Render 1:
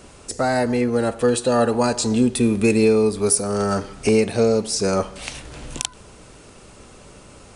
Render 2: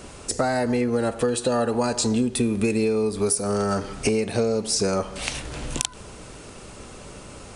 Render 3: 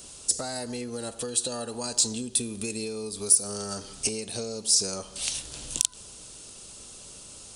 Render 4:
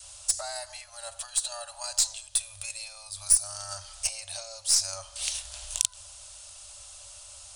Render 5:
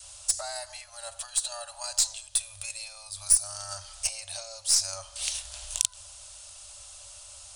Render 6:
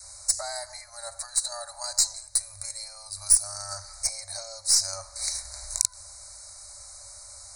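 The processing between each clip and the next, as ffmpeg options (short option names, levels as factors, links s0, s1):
-af "acompressor=threshold=0.0708:ratio=6,volume=1.5"
-af "aexciter=amount=5.8:drive=3.7:freq=3000,volume=0.237"
-af "aeval=exprs='0.891*(cos(1*acos(clip(val(0)/0.891,-1,1)))-cos(1*PI/2))+0.0282*(cos(8*acos(clip(val(0)/0.891,-1,1)))-cos(8*PI/2))':c=same,adynamicequalizer=threshold=0.00398:dfrequency=450:dqfactor=1.1:tfrequency=450:tqfactor=1.1:attack=5:release=100:ratio=0.375:range=3:mode=cutabove:tftype=bell,afftfilt=real='re*(1-between(b*sr/4096,100,540))':imag='im*(1-between(b*sr/4096,100,540))':win_size=4096:overlap=0.75,volume=0.891"
-af anull
-af "asuperstop=centerf=3000:order=20:qfactor=2,volume=1.26"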